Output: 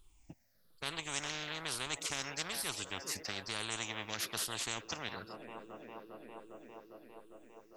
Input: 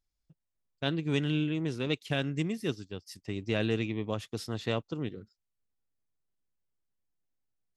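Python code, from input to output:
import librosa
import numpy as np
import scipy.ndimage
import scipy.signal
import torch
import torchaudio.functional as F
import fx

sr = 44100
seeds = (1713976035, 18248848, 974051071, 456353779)

y = fx.spec_ripple(x, sr, per_octave=0.65, drift_hz=-1.1, depth_db=15)
y = fx.echo_wet_bandpass(y, sr, ms=403, feedback_pct=72, hz=750.0, wet_db=-23.0)
y = fx.spectral_comp(y, sr, ratio=10.0)
y = F.gain(torch.from_numpy(y), -8.0).numpy()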